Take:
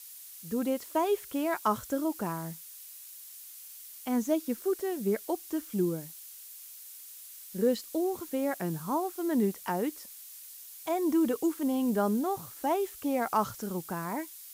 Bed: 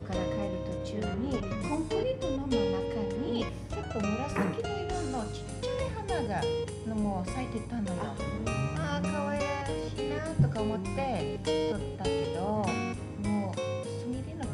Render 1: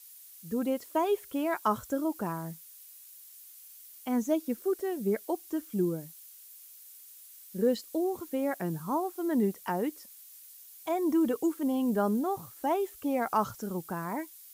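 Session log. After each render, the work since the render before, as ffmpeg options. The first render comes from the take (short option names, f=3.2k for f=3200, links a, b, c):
-af "afftdn=nr=6:nf=-48"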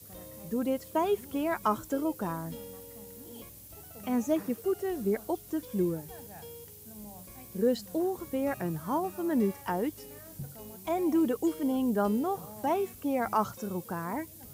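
-filter_complex "[1:a]volume=-16.5dB[a];[0:a][a]amix=inputs=2:normalize=0"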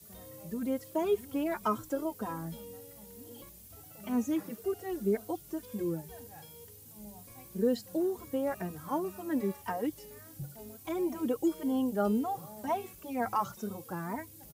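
-filter_complex "[0:a]asplit=2[a][b];[b]adelay=3,afreqshift=2[c];[a][c]amix=inputs=2:normalize=1"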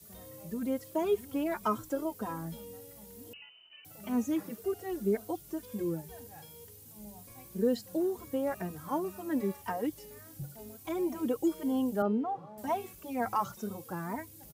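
-filter_complex "[0:a]asettb=1/sr,asplit=3[a][b][c];[a]atrim=end=3.334[d];[b]atrim=start=3.33:end=3.85,asetpts=PTS-STARTPTS,afade=t=in:d=0.004:c=qsin,afade=t=out:st=0.516:d=0.004:c=qsin,lowpass=f=2.6k:t=q:w=0.5098,lowpass=f=2.6k:t=q:w=0.6013,lowpass=f=2.6k:t=q:w=0.9,lowpass=f=2.6k:t=q:w=2.563,afreqshift=-3100[e];[c]atrim=start=3.846[f];[d][e]acrossfade=d=0.004:c1=hsin:c2=qsin[g];[g][f]acrossfade=d=0.004:c1=qsin:c2=hsin,asettb=1/sr,asplit=3[h][i][j];[h]atrim=end=12.024[k];[i]atrim=start=12.02:end=12.58,asetpts=PTS-STARTPTS,afade=t=in:d=0.004:c=qsin,afade=t=out:st=0.556:d=0.004:c=qsin,highpass=160,lowpass=2.1k[l];[j]atrim=start=12.576[m];[k][l]acrossfade=d=0.004:c1=hsin:c2=qsin[n];[n][m]acrossfade=d=0.004:c1=qsin:c2=hsin"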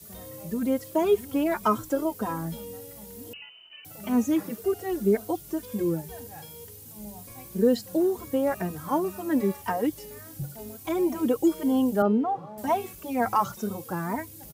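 -af "volume=7dB"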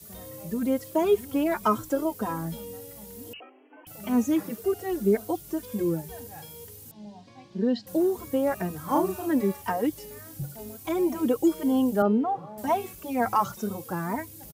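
-filter_complex "[0:a]asettb=1/sr,asplit=3[a][b][c];[a]atrim=end=3.404[d];[b]atrim=start=3.4:end=3.87,asetpts=PTS-STARTPTS,afade=t=in:d=0.004:c=qsin,afade=t=out:st=0.466:d=0.004:c=qsin,lowpass=f=2.8k:t=q:w=0.5098,lowpass=f=2.8k:t=q:w=0.6013,lowpass=f=2.8k:t=q:w=0.9,lowpass=f=2.8k:t=q:w=2.563,afreqshift=-3300[e];[c]atrim=start=3.866[f];[d][e]acrossfade=d=0.004:c1=hsin:c2=qsin[g];[g][f]acrossfade=d=0.004:c1=qsin:c2=hsin,asettb=1/sr,asplit=3[h][i][j];[h]atrim=end=6.914[k];[i]atrim=start=6.91:end=7.87,asetpts=PTS-STARTPTS,afade=t=in:d=0.004:c=qsin,afade=t=out:st=0.956:d=0.004:c=qsin,highpass=160,equalizer=f=470:t=q:w=4:g=-9,equalizer=f=1.3k:t=q:w=4:g=-8,equalizer=f=2.3k:t=q:w=4:g=-5,lowpass=f=4.6k:w=0.5412,lowpass=f=4.6k:w=1.3066[l];[j]atrim=start=7.866[m];[k][l]acrossfade=d=0.004:c1=hsin:c2=qsin[n];[n][m]acrossfade=d=0.004:c1=qsin:c2=hsin,asplit=3[o][p][q];[o]afade=t=out:st=8.88:d=0.02[r];[p]asplit=2[s][t];[t]adelay=38,volume=-2dB[u];[s][u]amix=inputs=2:normalize=0,afade=t=in:st=8.88:d=0.02,afade=t=out:st=9.3:d=0.02[v];[q]afade=t=in:st=9.3:d=0.02[w];[r][v][w]amix=inputs=3:normalize=0"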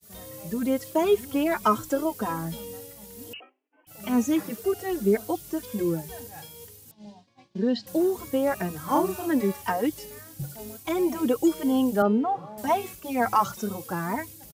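-af "agate=range=-33dB:threshold=-40dB:ratio=3:detection=peak,equalizer=f=4.1k:w=0.31:g=4.5"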